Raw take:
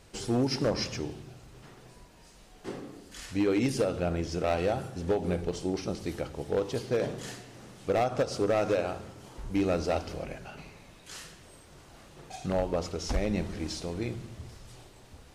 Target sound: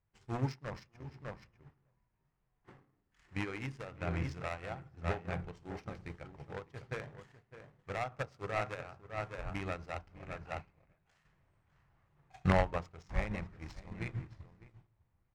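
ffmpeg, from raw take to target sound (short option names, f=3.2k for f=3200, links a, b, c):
-filter_complex "[0:a]bandreject=f=60:t=h:w=6,bandreject=f=120:t=h:w=6,bandreject=f=180:t=h:w=6,bandreject=f=240:t=h:w=6,bandreject=f=300:t=h:w=6,bandreject=f=360:t=h:w=6,bandreject=f=420:t=h:w=6,bandreject=f=480:t=h:w=6,asplit=2[a][b];[b]adelay=603,lowpass=f=3.5k:p=1,volume=-7dB,asplit=2[c][d];[d]adelay=603,lowpass=f=3.5k:p=1,volume=0.16,asplit=2[e][f];[f]adelay=603,lowpass=f=3.5k:p=1,volume=0.16[g];[c][e][g]amix=inputs=3:normalize=0[h];[a][h]amix=inputs=2:normalize=0,acrusher=bits=9:mode=log:mix=0:aa=0.000001,crystalizer=i=5:c=0,alimiter=limit=-20.5dB:level=0:latency=1:release=475,adynamicsmooth=sensitivity=3:basefreq=960,equalizer=f=125:t=o:w=1:g=7,equalizer=f=250:t=o:w=1:g=-5,equalizer=f=500:t=o:w=1:g=-4,equalizer=f=1k:t=o:w=1:g=7,equalizer=f=2k:t=o:w=1:g=9,equalizer=f=8k:t=o:w=1:g=5,asettb=1/sr,asplit=3[i][j][k];[i]atrim=end=5.484[l];[j]atrim=start=5.48:end=6.35,asetpts=PTS-STARTPTS,afade=t=in:d=0.004:c=qsin,afade=t=out:st=0.866:d=0.004:c=qsin,aeval=exprs='0.0944*(cos(1*acos(clip(val(0)/0.0944,-1,1)))-cos(1*PI/2))+0.00237*(cos(5*acos(clip(val(0)/0.0944,-1,1)))-cos(5*PI/2))':c=same[m];[k]atrim=start=6.346[n];[l][m]acrossfade=d=0.004:c1=hsin:c2=qsin[o];[o][n]acrossfade=d=0.004:c1=qsin:c2=hsin,lowshelf=f=210:g=6.5,agate=range=-33dB:threshold=-21dB:ratio=3:detection=peak,asettb=1/sr,asplit=3[p][q][r];[p]atrim=end=11.254[s];[q]atrim=start=11.25:end=12.78,asetpts=PTS-STARTPTS,afade=t=in:d=0.004:c=qsin,afade=t=out:st=1.526:d=0.004:c=qsin,acontrast=87[t];[r]atrim=start=12.776[u];[s][t]acrossfade=d=0.004:c1=hsin:c2=qsin[v];[v][u]acrossfade=d=0.004:c1=qsin:c2=hsin,volume=1.5dB"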